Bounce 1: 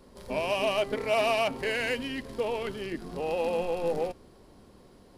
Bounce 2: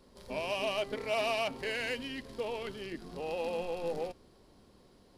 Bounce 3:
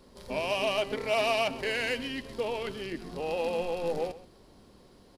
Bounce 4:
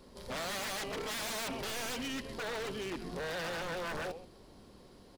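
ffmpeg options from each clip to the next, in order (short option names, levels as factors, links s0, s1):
-af "equalizer=f=4300:w=1:g=4.5,volume=0.473"
-af "aecho=1:1:130:0.141,volume=1.68"
-af "aeval=exprs='0.0224*(abs(mod(val(0)/0.0224+3,4)-2)-1)':c=same"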